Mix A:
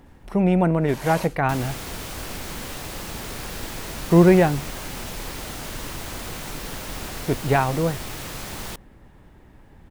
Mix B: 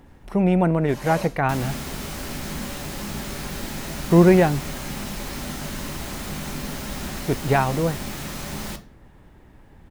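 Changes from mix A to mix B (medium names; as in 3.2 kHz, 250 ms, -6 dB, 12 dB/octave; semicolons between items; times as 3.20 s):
first sound -4.0 dB; reverb: on, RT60 0.40 s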